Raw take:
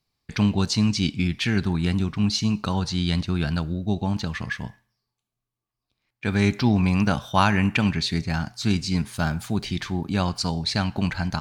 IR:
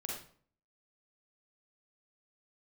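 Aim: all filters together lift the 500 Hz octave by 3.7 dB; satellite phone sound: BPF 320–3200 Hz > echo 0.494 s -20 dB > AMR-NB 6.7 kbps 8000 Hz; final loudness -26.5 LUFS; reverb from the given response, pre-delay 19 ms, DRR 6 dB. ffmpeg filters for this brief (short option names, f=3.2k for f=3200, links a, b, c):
-filter_complex "[0:a]equalizer=f=500:t=o:g=6.5,asplit=2[a][b];[1:a]atrim=start_sample=2205,adelay=19[c];[b][c]afir=irnorm=-1:irlink=0,volume=-6.5dB[d];[a][d]amix=inputs=2:normalize=0,highpass=320,lowpass=3.2k,aecho=1:1:494:0.1,volume=2dB" -ar 8000 -c:a libopencore_amrnb -b:a 6700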